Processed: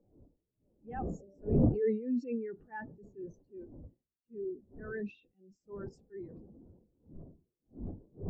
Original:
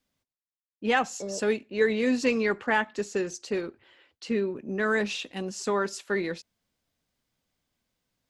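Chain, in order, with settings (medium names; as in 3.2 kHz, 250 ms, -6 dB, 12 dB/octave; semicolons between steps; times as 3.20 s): wind noise 420 Hz -29 dBFS; transient shaper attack -8 dB, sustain +10 dB; spectral contrast expander 2.5:1; trim -8 dB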